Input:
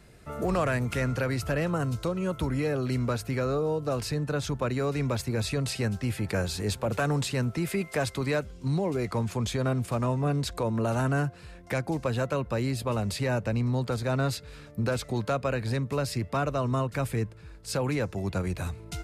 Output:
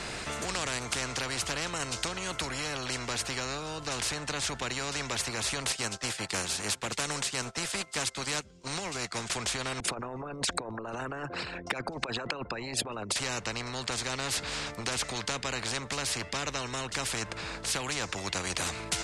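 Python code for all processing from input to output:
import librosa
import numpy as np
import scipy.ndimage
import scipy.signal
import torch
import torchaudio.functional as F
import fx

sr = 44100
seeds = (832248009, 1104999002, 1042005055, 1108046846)

y = fx.chain(x, sr, fx.highpass(hz=140.0, slope=12),
    fx.bass_treble(bass_db=5, treble_db=5),
    fx.upward_expand(threshold_db=-40.0, expansion=2.5), at=(5.72, 9.3))
y = fx.chain(y, sr, fx.envelope_sharpen(power=2.0),
    fx.highpass(hz=290.0, slope=12),
    fx.over_compress(threshold_db=-38.0, ratio=-1.0), at=(9.8, 13.16))
y = scipy.signal.sosfilt(scipy.signal.butter(4, 8200.0, 'lowpass', fs=sr, output='sos'), y)
y = fx.rider(y, sr, range_db=10, speed_s=0.5)
y = fx.spectral_comp(y, sr, ratio=4.0)
y = F.gain(torch.from_numpy(y), -1.5).numpy()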